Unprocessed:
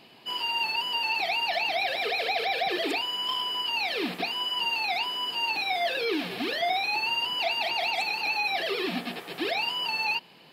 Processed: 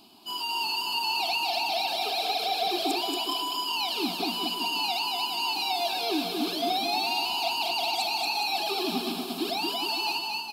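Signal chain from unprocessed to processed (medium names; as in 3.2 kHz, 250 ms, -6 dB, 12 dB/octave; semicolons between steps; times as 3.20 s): tone controls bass +5 dB, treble +8 dB; 7.02–7.53 s: companded quantiser 8-bit; static phaser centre 510 Hz, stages 6; bouncing-ball echo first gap 230 ms, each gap 0.8×, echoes 5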